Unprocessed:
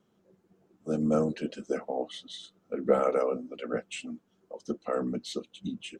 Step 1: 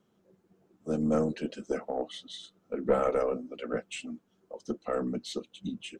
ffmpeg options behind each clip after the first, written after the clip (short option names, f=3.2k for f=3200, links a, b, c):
-af "aeval=exprs='(tanh(5.01*val(0)+0.25)-tanh(0.25))/5.01':c=same"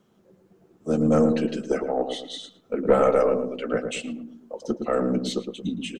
-filter_complex "[0:a]asplit=2[a][b];[b]adelay=112,lowpass=f=810:p=1,volume=-5dB,asplit=2[c][d];[d]adelay=112,lowpass=f=810:p=1,volume=0.44,asplit=2[e][f];[f]adelay=112,lowpass=f=810:p=1,volume=0.44,asplit=2[g][h];[h]adelay=112,lowpass=f=810:p=1,volume=0.44,asplit=2[i][j];[j]adelay=112,lowpass=f=810:p=1,volume=0.44[k];[a][c][e][g][i][k]amix=inputs=6:normalize=0,volume=7dB"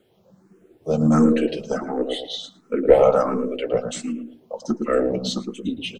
-filter_complex "[0:a]asplit=2[a][b];[b]afreqshift=1.4[c];[a][c]amix=inputs=2:normalize=1,volume=6dB"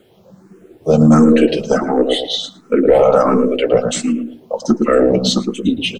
-af "alimiter=level_in=11.5dB:limit=-1dB:release=50:level=0:latency=1,volume=-1dB"